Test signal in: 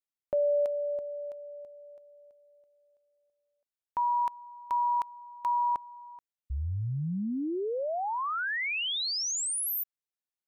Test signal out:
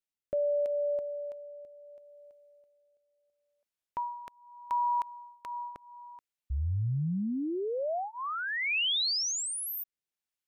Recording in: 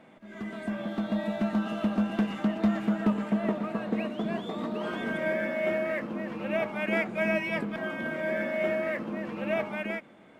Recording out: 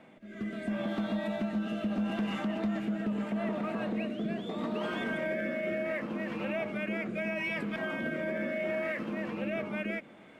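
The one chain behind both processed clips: rotary speaker horn 0.75 Hz; bell 2500 Hz +2.5 dB; limiter -27 dBFS; gain +2 dB

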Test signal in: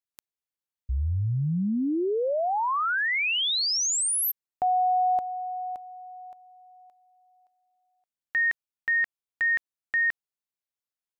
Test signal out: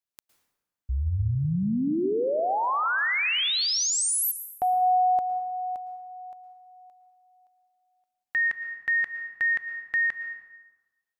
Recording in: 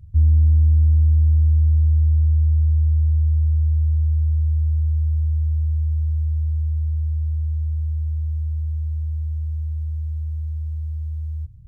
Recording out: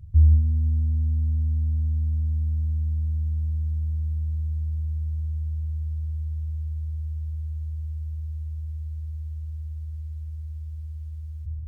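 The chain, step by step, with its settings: plate-style reverb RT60 1.2 s, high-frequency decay 0.65×, pre-delay 0.1 s, DRR 9 dB

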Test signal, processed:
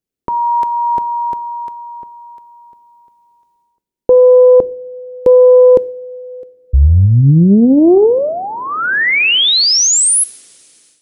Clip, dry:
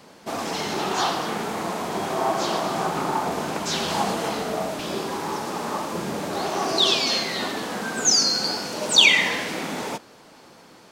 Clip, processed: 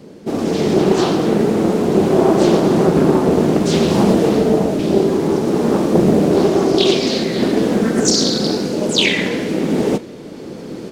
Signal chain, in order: resonant low shelf 590 Hz +13 dB, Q 1.5; two-slope reverb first 0.49 s, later 3.7 s, from -21 dB, DRR 16 dB; AGC gain up to 12 dB; Doppler distortion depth 0.46 ms; gain -1 dB

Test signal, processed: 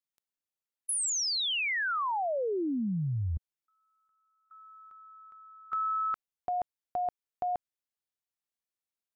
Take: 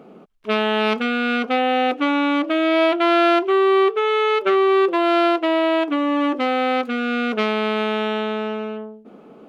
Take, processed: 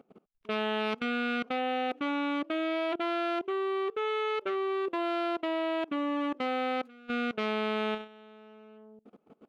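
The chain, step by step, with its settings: level quantiser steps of 22 dB; gain -8.5 dB

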